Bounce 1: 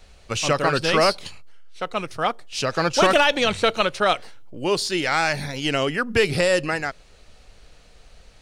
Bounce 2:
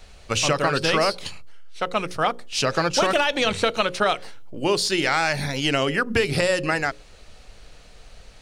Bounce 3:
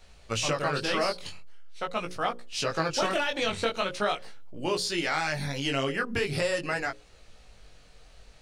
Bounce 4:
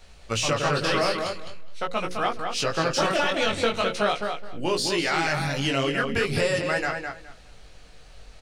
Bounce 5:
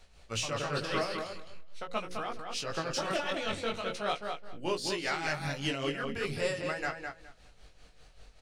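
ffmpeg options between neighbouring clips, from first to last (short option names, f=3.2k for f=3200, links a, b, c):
-af "acompressor=threshold=-20dB:ratio=6,bandreject=f=60:t=h:w=6,bandreject=f=120:t=h:w=6,bandreject=f=180:t=h:w=6,bandreject=f=240:t=h:w=6,bandreject=f=300:t=h:w=6,bandreject=f=360:t=h:w=6,bandreject=f=420:t=h:w=6,bandreject=f=480:t=h:w=6,bandreject=f=540:t=h:w=6,volume=3.5dB"
-af "flanger=delay=16.5:depth=5.6:speed=0.43,volume=-4dB"
-filter_complex "[0:a]asplit=2[a][b];[b]asoftclip=type=tanh:threshold=-23dB,volume=-4.5dB[c];[a][c]amix=inputs=2:normalize=0,asplit=2[d][e];[e]adelay=209,lowpass=f=3.6k:p=1,volume=-5dB,asplit=2[f][g];[g]adelay=209,lowpass=f=3.6k:p=1,volume=0.2,asplit=2[h][i];[i]adelay=209,lowpass=f=3.6k:p=1,volume=0.2[j];[d][f][h][j]amix=inputs=4:normalize=0"
-af "tremolo=f=5.1:d=0.61,volume=-5.5dB" -ar 48000 -c:a libmp3lame -b:a 160k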